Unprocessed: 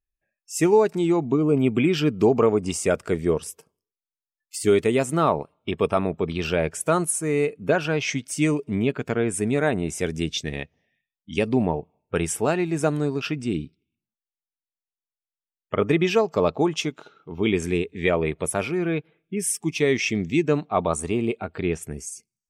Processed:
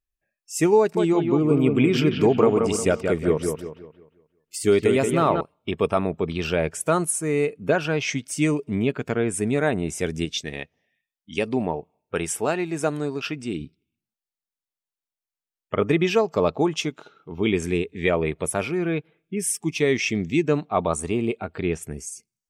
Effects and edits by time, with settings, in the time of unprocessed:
0.79–5.41 analogue delay 0.178 s, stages 4096, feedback 37%, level -5 dB
10.25–13.61 low shelf 220 Hz -8 dB

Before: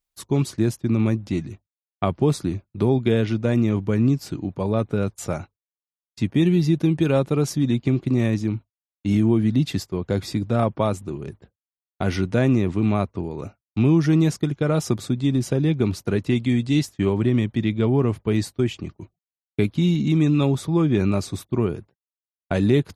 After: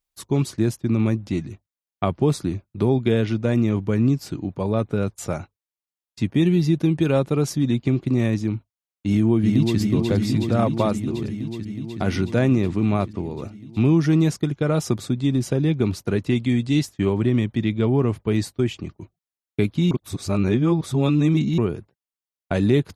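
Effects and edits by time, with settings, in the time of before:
9.06–9.79 echo throw 0.37 s, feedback 80%, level -4 dB
19.91–21.58 reverse

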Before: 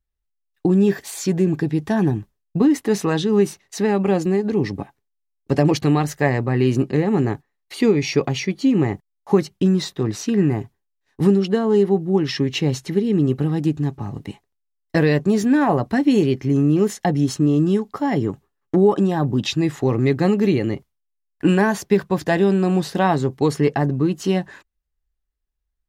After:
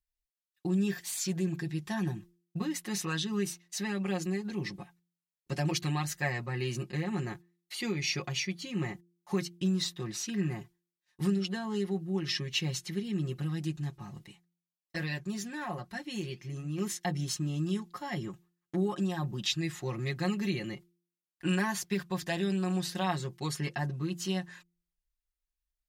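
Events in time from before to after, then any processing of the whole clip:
14.24–16.78 flange 1.2 Hz, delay 1.7 ms, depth 6.4 ms, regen -80%
whole clip: passive tone stack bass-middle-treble 5-5-5; comb 5.6 ms, depth 86%; de-hum 173.4 Hz, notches 2

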